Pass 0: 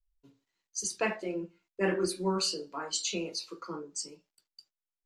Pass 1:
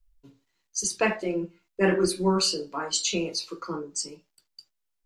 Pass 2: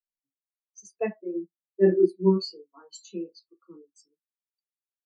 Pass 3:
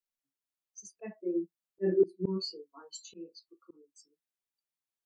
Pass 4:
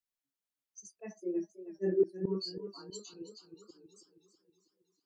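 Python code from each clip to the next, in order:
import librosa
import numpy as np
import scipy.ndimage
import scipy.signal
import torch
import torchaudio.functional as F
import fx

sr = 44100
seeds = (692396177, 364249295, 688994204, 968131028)

y1 = fx.low_shelf(x, sr, hz=90.0, db=9.0)
y1 = y1 * 10.0 ** (6.0 / 20.0)
y2 = fx.spectral_expand(y1, sr, expansion=2.5)
y3 = fx.auto_swell(y2, sr, attack_ms=252.0)
y4 = fx.echo_warbled(y3, sr, ms=321, feedback_pct=53, rate_hz=2.8, cents=75, wet_db=-12.5)
y4 = y4 * 10.0 ** (-2.5 / 20.0)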